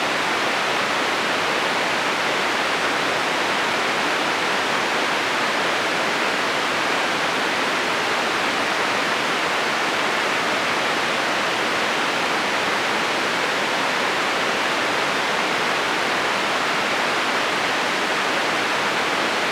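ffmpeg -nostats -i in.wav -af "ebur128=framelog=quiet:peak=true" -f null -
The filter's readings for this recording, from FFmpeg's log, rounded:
Integrated loudness:
  I:         -20.0 LUFS
  Threshold: -30.0 LUFS
Loudness range:
  LRA:         0.1 LU
  Threshold: -40.0 LUFS
  LRA low:   -20.1 LUFS
  LRA high:  -20.0 LUFS
True peak:
  Peak:       -7.1 dBFS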